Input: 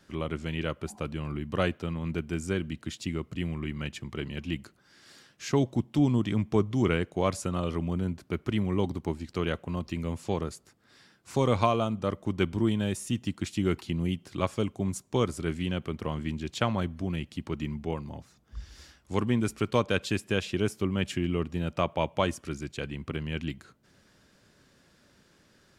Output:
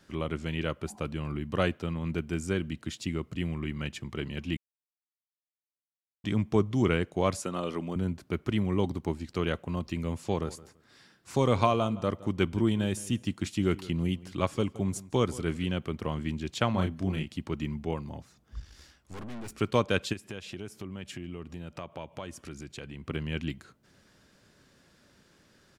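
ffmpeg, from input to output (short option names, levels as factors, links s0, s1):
-filter_complex "[0:a]asettb=1/sr,asplit=3[s0][s1][s2];[s0]atrim=end=7.424[s3];[s1]atrim=start=7.42:end=7.96,asetpts=PTS-STARTPTS,afade=t=in:d=0.004:c=qsin,afade=t=out:st=0.536:d=0.004:c=qsin,highpass=220[s4];[s2]atrim=start=7.956[s5];[s3][s4]acrossfade=d=0.004:c1=hsin:c2=qsin[s6];[s6][s5]acrossfade=d=0.004:c1=qsin:c2=hsin,asplit=3[s7][s8][s9];[s7]afade=t=out:st=10.42:d=0.02[s10];[s8]asplit=2[s11][s12];[s12]adelay=167,lowpass=f=3900:p=1,volume=0.119,asplit=2[s13][s14];[s14]adelay=167,lowpass=f=3900:p=1,volume=0.23[s15];[s11][s13][s15]amix=inputs=3:normalize=0,afade=t=in:st=10.42:d=0.02,afade=t=out:st=15.64:d=0.02[s16];[s9]afade=t=in:st=15.64:d=0.02[s17];[s10][s16][s17]amix=inputs=3:normalize=0,asettb=1/sr,asplit=3[s18][s19][s20];[s18]atrim=end=16.714[s21];[s19]atrim=start=16.71:end=17.33,asetpts=PTS-STARTPTS,afade=t=in:d=0.004:c=qsin,afade=t=out:st=0.616:d=0.004:c=qsin,asplit=2[s22][s23];[s23]adelay=32,volume=0.562[s24];[s22][s24]amix=inputs=2:normalize=0,atrim=end_sample=27342[s25];[s20]atrim=start=17.326[s26];[s21][s25]acrossfade=d=0.004:c1=hsin:c2=qsin[s27];[s27][s26]acrossfade=d=0.004:c1=qsin:c2=hsin,asettb=1/sr,asplit=3[s28][s29][s30];[s28]atrim=end=18.604[s31];[s29]atrim=start=18.6:end=19.55,asetpts=PTS-STARTPTS,afade=t=in:d=0.004:c=qsin,afade=t=out:st=0.946:d=0.004:c=qsin,aeval=exprs='(tanh(89.1*val(0)+0.65)-tanh(0.65))/89.1':c=same[s32];[s30]atrim=start=19.546[s33];[s31][s32]acrossfade=d=0.004:c1=hsin:c2=qsin[s34];[s34][s33]acrossfade=d=0.004:c1=qsin:c2=hsin,asplit=3[s35][s36][s37];[s35]afade=t=out:st=20.12:d=0.02[s38];[s36]acompressor=threshold=0.0112:ratio=3:attack=3.2:release=140:knee=1:detection=peak,afade=t=in:st=20.12:d=0.02,afade=t=out:st=23.08:d=0.02[s39];[s37]afade=t=in:st=23.08:d=0.02[s40];[s38][s39][s40]amix=inputs=3:normalize=0,asplit=3[s41][s42][s43];[s41]atrim=end=4.57,asetpts=PTS-STARTPTS,afade=t=out:st=4.566:d=0.004:c=hsin[s44];[s42]atrim=start=4.57:end=6.24,asetpts=PTS-STARTPTS,volume=0[s45];[s43]atrim=start=6.24,asetpts=PTS-STARTPTS,afade=t=in:d=0.004:c=hsin[s46];[s44][s45][s46]concat=n=3:v=0:a=1"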